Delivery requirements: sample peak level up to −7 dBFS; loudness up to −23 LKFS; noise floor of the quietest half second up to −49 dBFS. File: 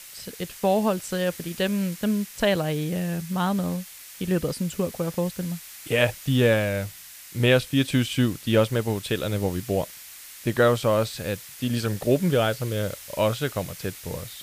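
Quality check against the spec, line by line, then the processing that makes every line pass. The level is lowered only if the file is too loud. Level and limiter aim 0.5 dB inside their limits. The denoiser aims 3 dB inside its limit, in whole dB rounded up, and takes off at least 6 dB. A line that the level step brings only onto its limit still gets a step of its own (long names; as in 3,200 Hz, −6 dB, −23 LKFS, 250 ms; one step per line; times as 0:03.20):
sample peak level −6.0 dBFS: out of spec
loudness −25.0 LKFS: in spec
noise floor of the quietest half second −43 dBFS: out of spec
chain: broadband denoise 9 dB, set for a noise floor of −43 dBFS
brickwall limiter −7.5 dBFS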